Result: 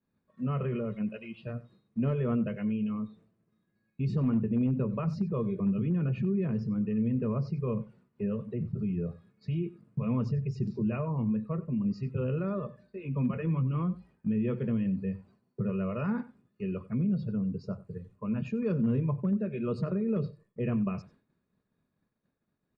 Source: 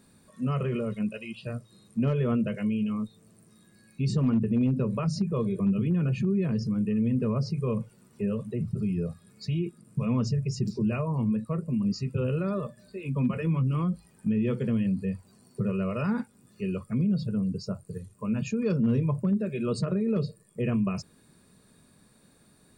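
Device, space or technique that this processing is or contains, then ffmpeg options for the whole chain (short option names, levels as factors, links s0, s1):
hearing-loss simulation: -filter_complex "[0:a]lowpass=2400,agate=range=0.0224:threshold=0.00355:ratio=3:detection=peak,asplit=2[s0][s1];[s1]adelay=93.29,volume=0.126,highshelf=f=4000:g=-2.1[s2];[s0][s2]amix=inputs=2:normalize=0,volume=0.708"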